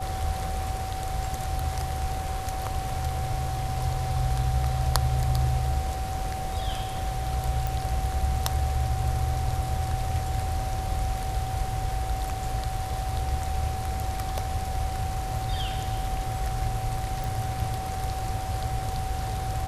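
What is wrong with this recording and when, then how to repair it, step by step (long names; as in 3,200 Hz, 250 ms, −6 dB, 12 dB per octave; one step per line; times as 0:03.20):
whistle 760 Hz −33 dBFS
0:07.67: click
0:17.24: click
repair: click removal
notch filter 760 Hz, Q 30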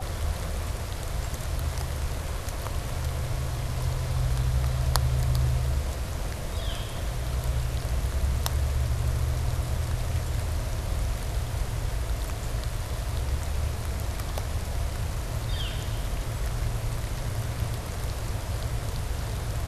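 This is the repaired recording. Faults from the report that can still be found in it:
none of them is left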